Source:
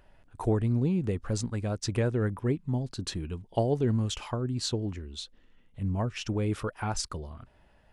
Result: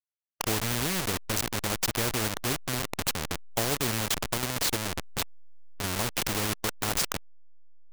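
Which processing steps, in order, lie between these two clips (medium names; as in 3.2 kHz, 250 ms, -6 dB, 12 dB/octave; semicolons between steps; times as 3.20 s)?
send-on-delta sampling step -28 dBFS; spectrum-flattening compressor 2:1; trim +4 dB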